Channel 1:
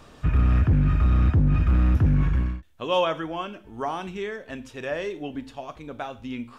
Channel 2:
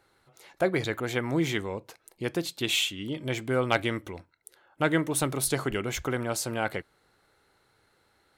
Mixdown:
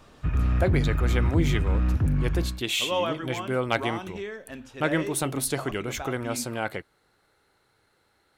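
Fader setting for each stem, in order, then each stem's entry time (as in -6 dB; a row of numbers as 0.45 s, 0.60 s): -4.0 dB, -0.5 dB; 0.00 s, 0.00 s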